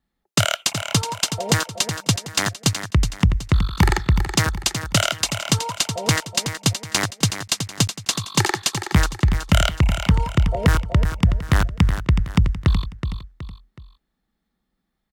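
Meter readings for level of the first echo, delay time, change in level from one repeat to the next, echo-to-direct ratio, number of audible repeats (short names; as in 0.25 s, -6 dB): -8.5 dB, 0.372 s, -8.0 dB, -8.0 dB, 3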